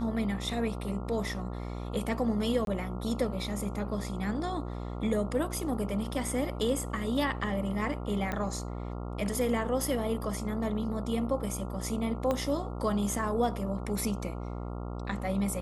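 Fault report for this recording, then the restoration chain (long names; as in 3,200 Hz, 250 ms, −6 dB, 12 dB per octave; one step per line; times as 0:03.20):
mains buzz 60 Hz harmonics 23 −37 dBFS
0:02.65–0:02.67: drop-out 22 ms
0:08.32: click −19 dBFS
0:12.31: click −17 dBFS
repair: click removal
hum removal 60 Hz, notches 23
repair the gap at 0:02.65, 22 ms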